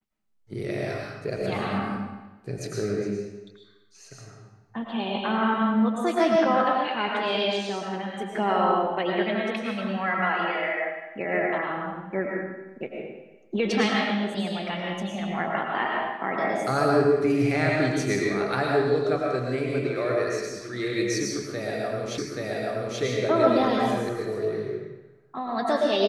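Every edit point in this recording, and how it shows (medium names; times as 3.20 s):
22.18 s: repeat of the last 0.83 s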